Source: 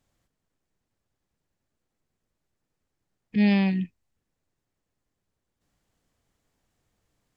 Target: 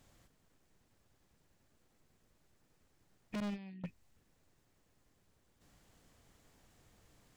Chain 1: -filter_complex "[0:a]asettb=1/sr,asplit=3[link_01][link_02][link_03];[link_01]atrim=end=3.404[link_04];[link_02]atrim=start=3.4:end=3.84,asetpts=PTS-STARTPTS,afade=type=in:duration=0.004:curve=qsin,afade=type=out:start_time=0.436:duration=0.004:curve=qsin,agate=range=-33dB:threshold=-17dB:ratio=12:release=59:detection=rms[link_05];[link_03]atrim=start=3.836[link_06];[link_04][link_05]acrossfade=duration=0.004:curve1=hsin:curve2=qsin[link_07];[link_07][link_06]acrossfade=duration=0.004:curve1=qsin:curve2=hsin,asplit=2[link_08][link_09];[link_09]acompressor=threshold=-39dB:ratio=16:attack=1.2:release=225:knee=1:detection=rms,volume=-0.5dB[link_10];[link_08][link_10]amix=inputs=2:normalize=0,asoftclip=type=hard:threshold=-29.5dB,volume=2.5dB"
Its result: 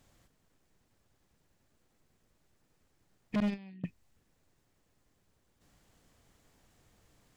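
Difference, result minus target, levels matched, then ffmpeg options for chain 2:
hard clipping: distortion −4 dB
-filter_complex "[0:a]asettb=1/sr,asplit=3[link_01][link_02][link_03];[link_01]atrim=end=3.404[link_04];[link_02]atrim=start=3.4:end=3.84,asetpts=PTS-STARTPTS,afade=type=in:duration=0.004:curve=qsin,afade=type=out:start_time=0.436:duration=0.004:curve=qsin,agate=range=-33dB:threshold=-17dB:ratio=12:release=59:detection=rms[link_05];[link_03]atrim=start=3.836[link_06];[link_04][link_05]acrossfade=duration=0.004:curve1=hsin:curve2=qsin[link_07];[link_07][link_06]acrossfade=duration=0.004:curve1=qsin:curve2=hsin,asplit=2[link_08][link_09];[link_09]acompressor=threshold=-39dB:ratio=16:attack=1.2:release=225:knee=1:detection=rms,volume=-0.5dB[link_10];[link_08][link_10]amix=inputs=2:normalize=0,asoftclip=type=hard:threshold=-39dB,volume=2.5dB"

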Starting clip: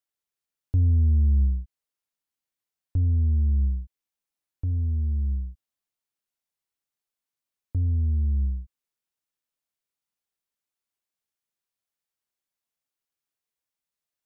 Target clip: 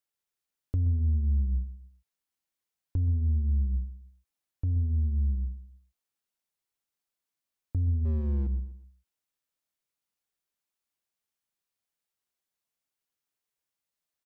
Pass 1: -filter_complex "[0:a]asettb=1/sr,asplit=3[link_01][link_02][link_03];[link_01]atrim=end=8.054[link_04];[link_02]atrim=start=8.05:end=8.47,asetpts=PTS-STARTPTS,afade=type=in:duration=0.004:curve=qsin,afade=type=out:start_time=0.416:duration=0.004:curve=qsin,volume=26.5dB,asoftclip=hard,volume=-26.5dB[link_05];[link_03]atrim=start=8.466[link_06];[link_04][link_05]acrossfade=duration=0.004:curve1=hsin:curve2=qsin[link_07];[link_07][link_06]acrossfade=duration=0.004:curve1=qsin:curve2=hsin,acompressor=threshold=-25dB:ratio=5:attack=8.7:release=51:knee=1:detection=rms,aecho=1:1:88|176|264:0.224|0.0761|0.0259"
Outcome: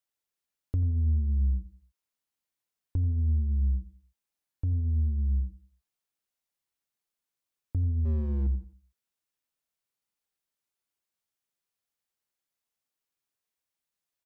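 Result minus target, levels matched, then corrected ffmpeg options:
echo 37 ms early
-filter_complex "[0:a]asettb=1/sr,asplit=3[link_01][link_02][link_03];[link_01]atrim=end=8.054[link_04];[link_02]atrim=start=8.05:end=8.47,asetpts=PTS-STARTPTS,afade=type=in:duration=0.004:curve=qsin,afade=type=out:start_time=0.416:duration=0.004:curve=qsin,volume=26.5dB,asoftclip=hard,volume=-26.5dB[link_05];[link_03]atrim=start=8.466[link_06];[link_04][link_05]acrossfade=duration=0.004:curve1=hsin:curve2=qsin[link_07];[link_07][link_06]acrossfade=duration=0.004:curve1=qsin:curve2=hsin,acompressor=threshold=-25dB:ratio=5:attack=8.7:release=51:knee=1:detection=rms,aecho=1:1:125|250|375:0.224|0.0761|0.0259"

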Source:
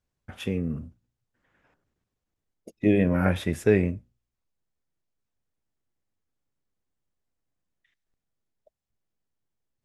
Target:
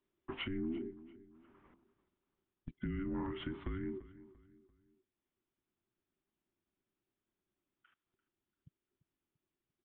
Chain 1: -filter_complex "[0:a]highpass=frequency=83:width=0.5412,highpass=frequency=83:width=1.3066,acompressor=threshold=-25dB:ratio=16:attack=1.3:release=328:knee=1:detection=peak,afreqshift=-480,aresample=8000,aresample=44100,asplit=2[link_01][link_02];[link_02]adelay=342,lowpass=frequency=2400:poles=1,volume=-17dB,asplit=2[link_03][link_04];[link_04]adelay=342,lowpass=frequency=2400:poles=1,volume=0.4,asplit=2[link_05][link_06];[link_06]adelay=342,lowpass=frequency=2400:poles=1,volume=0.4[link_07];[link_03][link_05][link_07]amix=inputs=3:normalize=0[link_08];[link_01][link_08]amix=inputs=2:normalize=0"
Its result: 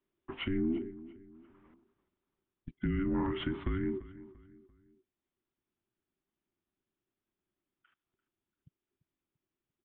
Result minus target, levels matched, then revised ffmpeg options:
downward compressor: peak gain reduction −7 dB
-filter_complex "[0:a]highpass=frequency=83:width=0.5412,highpass=frequency=83:width=1.3066,acompressor=threshold=-32.5dB:ratio=16:attack=1.3:release=328:knee=1:detection=peak,afreqshift=-480,aresample=8000,aresample=44100,asplit=2[link_01][link_02];[link_02]adelay=342,lowpass=frequency=2400:poles=1,volume=-17dB,asplit=2[link_03][link_04];[link_04]adelay=342,lowpass=frequency=2400:poles=1,volume=0.4,asplit=2[link_05][link_06];[link_06]adelay=342,lowpass=frequency=2400:poles=1,volume=0.4[link_07];[link_03][link_05][link_07]amix=inputs=3:normalize=0[link_08];[link_01][link_08]amix=inputs=2:normalize=0"

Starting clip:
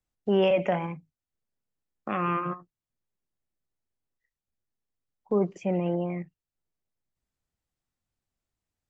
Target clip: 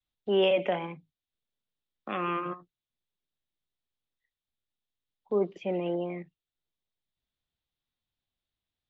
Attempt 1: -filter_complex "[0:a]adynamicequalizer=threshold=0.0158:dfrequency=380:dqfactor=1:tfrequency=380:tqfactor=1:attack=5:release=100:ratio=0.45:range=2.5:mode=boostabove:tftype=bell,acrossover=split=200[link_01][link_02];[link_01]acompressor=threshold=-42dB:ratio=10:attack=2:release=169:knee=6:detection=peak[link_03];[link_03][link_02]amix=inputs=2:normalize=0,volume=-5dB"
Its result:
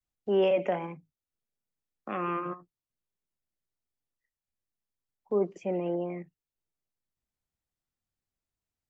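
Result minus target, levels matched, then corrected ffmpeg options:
4,000 Hz band −8.5 dB
-filter_complex "[0:a]adynamicequalizer=threshold=0.0158:dfrequency=380:dqfactor=1:tfrequency=380:tqfactor=1:attack=5:release=100:ratio=0.45:range=2.5:mode=boostabove:tftype=bell,lowpass=frequency=3600:width_type=q:width=4.6,acrossover=split=200[link_01][link_02];[link_01]acompressor=threshold=-42dB:ratio=10:attack=2:release=169:knee=6:detection=peak[link_03];[link_03][link_02]amix=inputs=2:normalize=0,volume=-5dB"

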